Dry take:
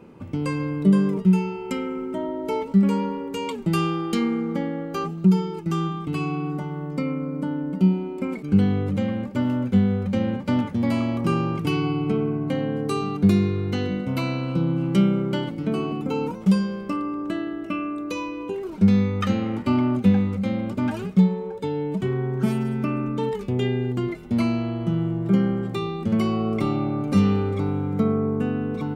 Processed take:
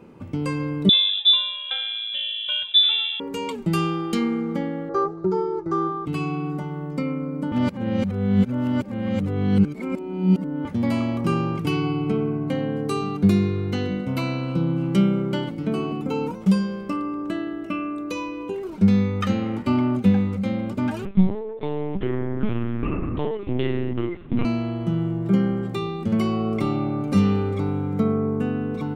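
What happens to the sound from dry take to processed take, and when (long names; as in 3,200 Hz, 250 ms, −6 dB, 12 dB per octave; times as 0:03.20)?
0:00.89–0:03.20: voice inversion scrambler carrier 3,700 Hz
0:04.89–0:06.06: drawn EQ curve 120 Hz 0 dB, 220 Hz −18 dB, 360 Hz +8 dB, 750 Hz +3 dB, 1,100 Hz +7 dB, 1,900 Hz −3 dB, 2,800 Hz −22 dB, 3,900 Hz −9 dB, 5,900 Hz −9 dB, 11,000 Hz −26 dB
0:07.52–0:10.65: reverse
0:21.05–0:24.45: linear-prediction vocoder at 8 kHz pitch kept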